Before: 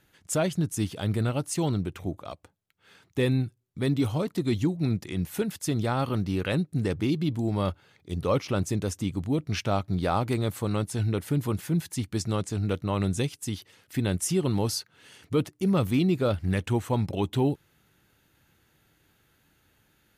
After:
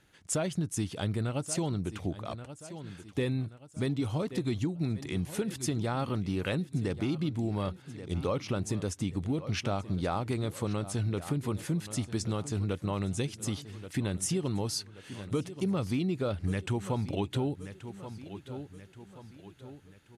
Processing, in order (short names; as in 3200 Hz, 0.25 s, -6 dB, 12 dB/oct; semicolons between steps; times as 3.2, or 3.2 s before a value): LPF 11000 Hz 24 dB/oct; feedback echo 1.129 s, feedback 44%, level -17 dB; compressor, threshold -27 dBFS, peak gain reduction 8 dB